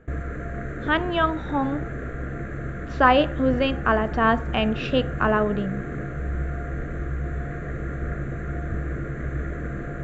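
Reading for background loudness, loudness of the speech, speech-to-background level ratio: -31.5 LUFS, -23.0 LUFS, 8.5 dB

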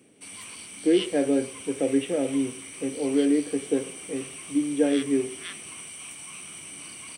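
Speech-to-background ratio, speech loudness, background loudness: 11.0 dB, -26.5 LUFS, -37.5 LUFS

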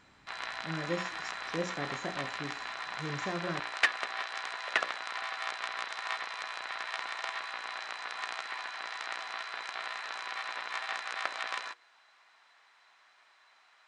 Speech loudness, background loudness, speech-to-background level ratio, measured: -40.0 LUFS, -36.5 LUFS, -3.5 dB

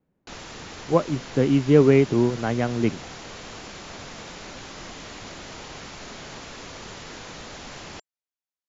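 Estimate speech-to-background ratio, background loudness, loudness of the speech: 17.5 dB, -38.5 LUFS, -21.0 LUFS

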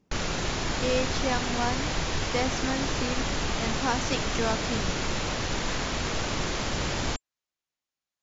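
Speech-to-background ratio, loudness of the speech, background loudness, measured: -2.5 dB, -32.0 LUFS, -29.5 LUFS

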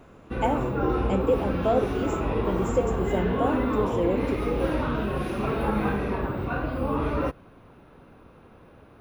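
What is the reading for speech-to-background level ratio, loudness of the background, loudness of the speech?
-2.0 dB, -27.5 LUFS, -29.5 LUFS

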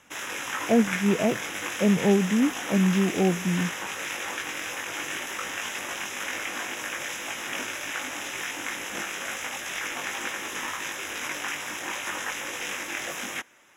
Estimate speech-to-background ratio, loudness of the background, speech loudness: 7.0 dB, -31.5 LUFS, -24.5 LUFS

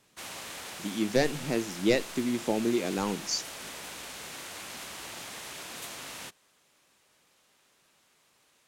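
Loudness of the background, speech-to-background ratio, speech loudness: -40.0 LUFS, 10.5 dB, -29.5 LUFS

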